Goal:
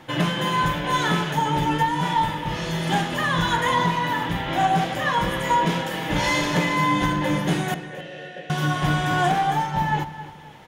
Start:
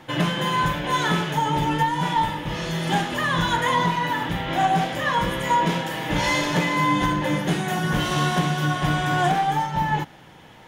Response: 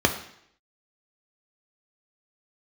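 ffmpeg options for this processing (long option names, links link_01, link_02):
-filter_complex "[0:a]asettb=1/sr,asplit=3[link_01][link_02][link_03];[link_01]atrim=end=7.744[link_04];[link_02]atrim=start=7.74:end=8.5,asetpts=PTS-STARTPTS,afade=type=in:duration=0.004:curve=qsin,afade=type=out:start_time=0.756:duration=0.004:curve=qsin,asplit=3[link_05][link_06][link_07];[link_05]bandpass=frequency=530:width_type=q:width=8,volume=0dB[link_08];[link_06]bandpass=frequency=1840:width_type=q:width=8,volume=-6dB[link_09];[link_07]bandpass=frequency=2480:width_type=q:width=8,volume=-9dB[link_10];[link_08][link_09][link_10]amix=inputs=3:normalize=0[link_11];[link_03]atrim=start=8.496[link_12];[link_04][link_11]acrossfade=duration=0.004:curve1=hsin:curve2=qsin[link_13];[link_13][link_12]acrossfade=duration=0.004:curve1=qsin:curve2=hsin,asplit=2[link_14][link_15];[link_15]adelay=267,lowpass=frequency=4800:poles=1,volume=-13.5dB,asplit=2[link_16][link_17];[link_17]adelay=267,lowpass=frequency=4800:poles=1,volume=0.35,asplit=2[link_18][link_19];[link_19]adelay=267,lowpass=frequency=4800:poles=1,volume=0.35[link_20];[link_14][link_16][link_18][link_20]amix=inputs=4:normalize=0"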